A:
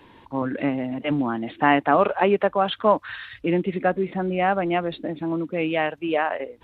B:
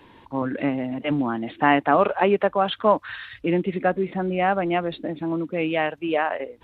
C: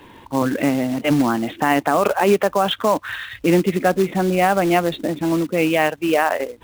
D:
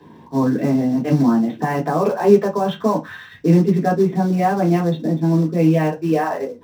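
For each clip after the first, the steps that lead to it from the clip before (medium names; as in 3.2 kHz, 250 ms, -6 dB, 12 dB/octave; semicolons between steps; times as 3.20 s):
no audible change
peak limiter -13 dBFS, peak gain reduction 8 dB; short-mantissa float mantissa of 2-bit; trim +6.5 dB
reverberation RT60 0.20 s, pre-delay 3 ms, DRR -3.5 dB; trim -16.5 dB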